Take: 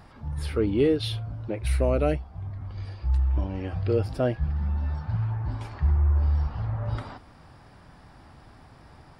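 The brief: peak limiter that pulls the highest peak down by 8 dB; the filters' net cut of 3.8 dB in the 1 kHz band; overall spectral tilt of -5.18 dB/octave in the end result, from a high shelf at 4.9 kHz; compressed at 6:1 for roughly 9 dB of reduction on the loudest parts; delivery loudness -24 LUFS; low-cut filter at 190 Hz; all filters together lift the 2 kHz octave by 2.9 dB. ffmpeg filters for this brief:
-af "highpass=190,equalizer=f=1000:t=o:g=-7,equalizer=f=2000:t=o:g=4.5,highshelf=f=4900:g=7,acompressor=threshold=0.0398:ratio=6,volume=5.62,alimiter=limit=0.251:level=0:latency=1"

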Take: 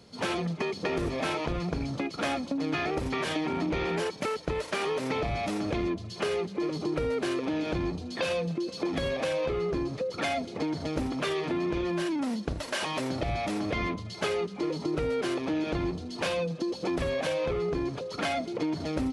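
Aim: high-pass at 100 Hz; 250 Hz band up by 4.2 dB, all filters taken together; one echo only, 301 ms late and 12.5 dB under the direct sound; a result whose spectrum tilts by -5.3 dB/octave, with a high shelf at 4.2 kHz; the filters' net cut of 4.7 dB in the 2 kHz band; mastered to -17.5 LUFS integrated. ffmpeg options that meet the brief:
-af "highpass=100,equalizer=f=250:t=o:g=6,equalizer=f=2000:t=o:g=-7,highshelf=f=4200:g=4,aecho=1:1:301:0.237,volume=3.55"

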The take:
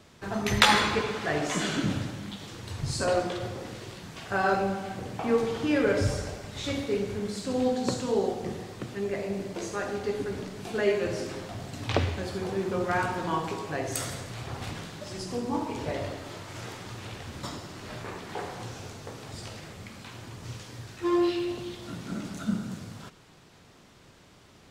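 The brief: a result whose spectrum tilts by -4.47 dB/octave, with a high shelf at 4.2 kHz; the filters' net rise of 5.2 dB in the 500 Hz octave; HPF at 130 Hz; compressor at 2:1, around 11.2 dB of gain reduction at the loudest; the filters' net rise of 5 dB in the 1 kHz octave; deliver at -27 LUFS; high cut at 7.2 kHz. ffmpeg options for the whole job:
-af "highpass=130,lowpass=7200,equalizer=f=500:t=o:g=5.5,equalizer=f=1000:t=o:g=5,highshelf=f=4200:g=-8.5,acompressor=threshold=0.0178:ratio=2,volume=2.51"

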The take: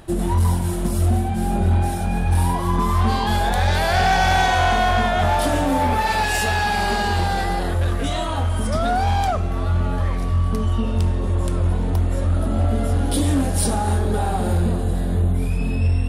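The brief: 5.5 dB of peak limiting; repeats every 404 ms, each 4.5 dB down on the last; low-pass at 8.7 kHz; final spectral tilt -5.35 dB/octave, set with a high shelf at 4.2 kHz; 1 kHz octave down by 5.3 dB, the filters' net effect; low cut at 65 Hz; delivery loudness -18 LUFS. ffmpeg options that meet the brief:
-af "highpass=65,lowpass=8700,equalizer=f=1000:t=o:g=-7.5,highshelf=f=4200:g=-3.5,alimiter=limit=0.188:level=0:latency=1,aecho=1:1:404|808|1212|1616|2020|2424|2828|3232|3636:0.596|0.357|0.214|0.129|0.0772|0.0463|0.0278|0.0167|0.01,volume=1.68"

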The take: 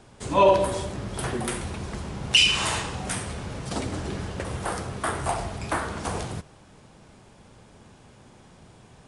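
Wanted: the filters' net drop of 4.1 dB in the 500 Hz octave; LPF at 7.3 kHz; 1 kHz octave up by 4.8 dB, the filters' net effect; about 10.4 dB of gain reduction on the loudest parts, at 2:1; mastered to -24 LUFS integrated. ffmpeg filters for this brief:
-af "lowpass=7300,equalizer=f=500:t=o:g=-7.5,equalizer=f=1000:t=o:g=7,acompressor=threshold=0.0282:ratio=2,volume=2.51"

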